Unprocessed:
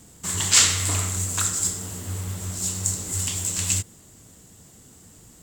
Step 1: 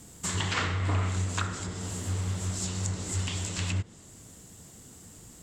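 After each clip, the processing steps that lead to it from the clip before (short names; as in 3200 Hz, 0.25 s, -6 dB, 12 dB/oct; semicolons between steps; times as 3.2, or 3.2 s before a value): treble ducked by the level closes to 1500 Hz, closed at -18.5 dBFS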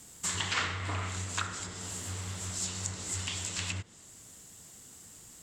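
tilt shelf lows -5 dB, about 690 Hz; gain -4.5 dB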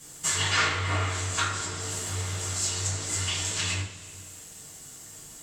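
two-slope reverb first 0.39 s, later 2.4 s, from -20 dB, DRR -7.5 dB; gain -1 dB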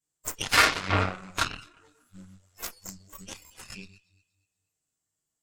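spectral noise reduction 26 dB; echo with dull and thin repeats by turns 0.118 s, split 2000 Hz, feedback 57%, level -8 dB; added harmonics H 6 -22 dB, 7 -16 dB, 8 -18 dB, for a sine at -12 dBFS; gain +6 dB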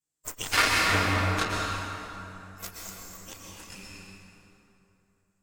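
plate-style reverb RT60 3.1 s, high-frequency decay 0.6×, pre-delay 0.105 s, DRR -2.5 dB; gain -3.5 dB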